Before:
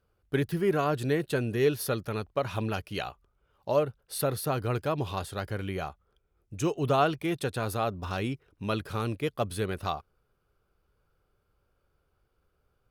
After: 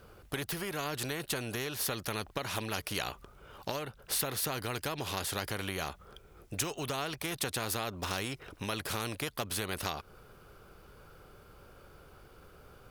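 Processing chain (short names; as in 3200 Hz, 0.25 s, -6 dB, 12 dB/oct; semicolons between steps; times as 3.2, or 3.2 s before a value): compressor 6:1, threshold -36 dBFS, peak gain reduction 15.5 dB; spectral compressor 2:1; gain +8 dB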